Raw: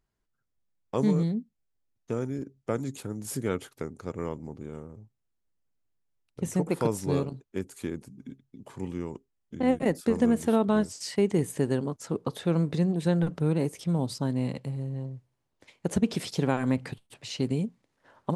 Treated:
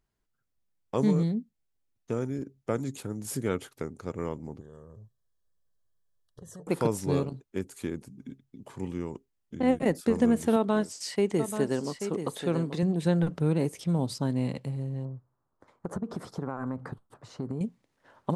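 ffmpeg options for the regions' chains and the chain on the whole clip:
-filter_complex "[0:a]asettb=1/sr,asplit=3[a][b][c];[a]atrim=end=4.604[d];[b]atrim=start=4.6:end=6.67,asetpts=PTS-STARTPTS,afade=t=in:d=0.004:c=qsin,afade=t=out:st=2.066:d=0.004:c=qsin,aecho=1:1:1.8:0.58,atrim=end_sample=91287,acompressor=threshold=-44dB:ratio=6:attack=3.2:release=140:knee=1:detection=peak,asuperstop=centerf=2400:order=20:qfactor=2.5[e];[c]atrim=start=6.666[f];[d][e]acrossfade=d=0.004:c1=hsin:c2=qsin[g];[g][f]acrossfade=d=0.004:c1=qsin:c2=hsin,asettb=1/sr,asplit=3[h][i][j];[h]atrim=end=10.564[k];[i]atrim=start=10.56:end=12.83,asetpts=PTS-STARTPTS,afade=t=in:d=0.004:c=qsin,afade=t=out:st=2.266:d=0.004:c=qsin,equalizer=f=67:w=0.77:g=-14.5,aecho=1:1:834:0.376,atrim=end_sample=100107[l];[j]atrim=start=12.826[m];[k][l]acrossfade=d=0.004:c1=hsin:c2=qsin[n];[n][m]acrossfade=d=0.004:c1=qsin:c2=hsin,asettb=1/sr,asplit=3[o][p][q];[o]atrim=end=15.054[r];[p]atrim=start=15.05:end=17.61,asetpts=PTS-STARTPTS,afade=t=in:d=0.004:c=qsin,afade=t=out:st=2.556:d=0.004:c=qsin,highshelf=f=1.8k:t=q:w=3:g=-12.5,acompressor=threshold=-29dB:ratio=5:attack=3.2:release=140:knee=1:detection=peak[s];[q]atrim=start=17.606[t];[r][s]acrossfade=d=0.004:c1=hsin:c2=qsin[u];[u][t]acrossfade=d=0.004:c1=qsin:c2=hsin"

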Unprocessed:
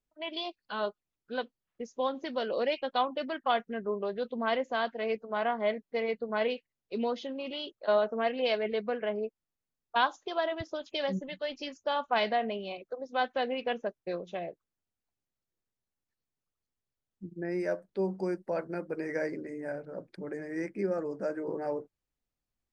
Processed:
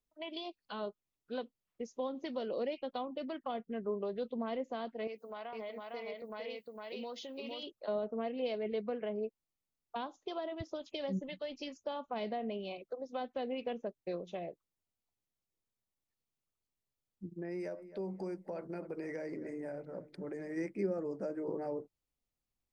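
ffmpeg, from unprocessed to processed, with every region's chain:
-filter_complex "[0:a]asettb=1/sr,asplit=3[a][b][c];[a]atrim=end=5.074[d];[b]atrim=start=5.07:end=7.63,asetpts=PTS-STARTPTS,afade=t=in:d=0.004:c=qsin,afade=t=out:st=2.556:d=0.004:c=qsin,aemphasis=mode=production:type=bsi,acompressor=threshold=-41dB:ratio=2.5:attack=3.2:release=140:knee=1:detection=peak,aecho=1:1:457:0.708,atrim=end_sample=112896[e];[c]atrim=start=7.626[f];[d][e]acrossfade=d=0.004:c1=hsin:c2=qsin[g];[g][f]acrossfade=d=0.004:c1=qsin:c2=hsin,asettb=1/sr,asplit=3[h][i][j];[h]atrim=end=17.294[k];[i]atrim=start=17.29:end=20.57,asetpts=PTS-STARTPTS,afade=t=in:d=0.004:c=qsin,afade=t=out:st=3.276:d=0.004:c=qsin,asplit=2[l][m];[m]adelay=264,lowpass=f=1.8k:p=1,volume=-18.5dB,asplit=2[n][o];[o]adelay=264,lowpass=f=1.8k:p=1,volume=0.48,asplit=2[p][q];[q]adelay=264,lowpass=f=1.8k:p=1,volume=0.48,asplit=2[r][s];[s]adelay=264,lowpass=f=1.8k:p=1,volume=0.48[t];[l][n][p][r][t]amix=inputs=5:normalize=0,atrim=end_sample=144648,acompressor=threshold=-35dB:ratio=3:attack=3.2:release=140:knee=1:detection=peak[u];[j]atrim=start=20.566[v];[k][u]acrossfade=d=0.004:c1=hsin:c2=qsin[w];[w][v]acrossfade=d=0.004:c1=qsin:c2=hsin,equalizer=f=1.6k:t=o:w=0.35:g=-6.5,acrossover=split=470[x][y];[y]acompressor=threshold=-40dB:ratio=6[z];[x][z]amix=inputs=2:normalize=0,volume=-2dB"

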